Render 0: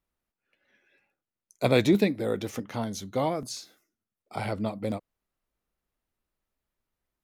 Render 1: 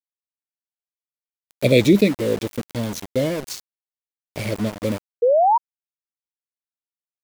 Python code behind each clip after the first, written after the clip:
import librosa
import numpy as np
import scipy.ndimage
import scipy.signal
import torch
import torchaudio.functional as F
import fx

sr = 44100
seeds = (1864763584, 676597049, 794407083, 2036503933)

y = scipy.signal.sosfilt(scipy.signal.ellip(3, 1.0, 40, [590.0, 2100.0], 'bandstop', fs=sr, output='sos'), x)
y = np.where(np.abs(y) >= 10.0 ** (-35.0 / 20.0), y, 0.0)
y = fx.spec_paint(y, sr, seeds[0], shape='rise', start_s=5.22, length_s=0.36, low_hz=460.0, high_hz=980.0, level_db=-23.0)
y = y * 10.0 ** (8.0 / 20.0)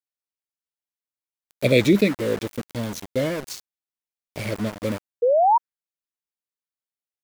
y = fx.dynamic_eq(x, sr, hz=1500.0, q=1.2, threshold_db=-37.0, ratio=4.0, max_db=7)
y = y * 10.0 ** (-3.0 / 20.0)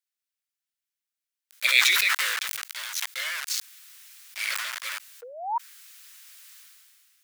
y = scipy.signal.sosfilt(scipy.signal.butter(4, 1400.0, 'highpass', fs=sr, output='sos'), x)
y = fx.sustainer(y, sr, db_per_s=25.0)
y = y * 10.0 ** (5.0 / 20.0)